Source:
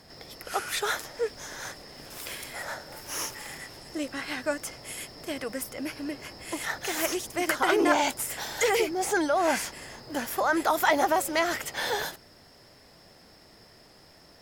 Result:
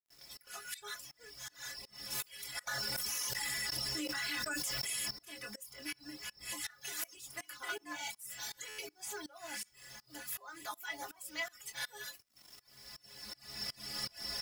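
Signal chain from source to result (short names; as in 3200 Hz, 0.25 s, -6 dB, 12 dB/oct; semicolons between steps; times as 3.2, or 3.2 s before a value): recorder AGC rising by 14 dB/s; passive tone stack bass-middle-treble 5-5-5; metallic resonator 62 Hz, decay 0.41 s, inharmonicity 0.03; bit-crush 10-bit; early reflections 24 ms -8.5 dB, 66 ms -16 dB; tremolo saw up 2.7 Hz, depth 90%; reverb removal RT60 0.52 s; stuck buffer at 8.68, samples 512, times 8; 2.67–5.11 fast leveller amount 100%; gain +6.5 dB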